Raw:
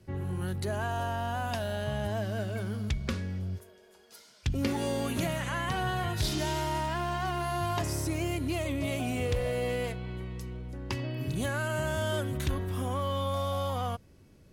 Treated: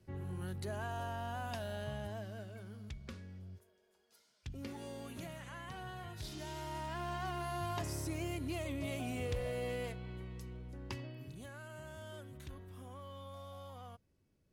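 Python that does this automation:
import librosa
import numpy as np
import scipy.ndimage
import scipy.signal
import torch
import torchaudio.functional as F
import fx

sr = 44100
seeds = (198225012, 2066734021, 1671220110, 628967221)

y = fx.gain(x, sr, db=fx.line((1.84, -8.5), (2.57, -15.5), (6.29, -15.5), (7.1, -8.0), (10.86, -8.0), (11.4, -18.5)))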